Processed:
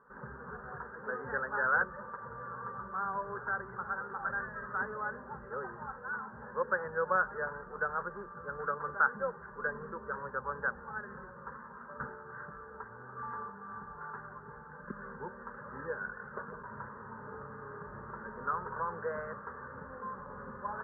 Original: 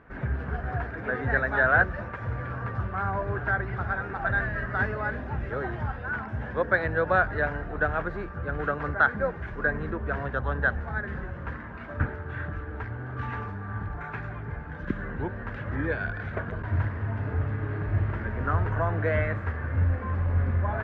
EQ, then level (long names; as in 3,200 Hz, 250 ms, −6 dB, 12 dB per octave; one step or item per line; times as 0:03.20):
inverse Chebyshev low-pass filter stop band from 3,600 Hz, stop band 50 dB
spectral tilt +4 dB per octave
phaser with its sweep stopped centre 460 Hz, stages 8
−2.0 dB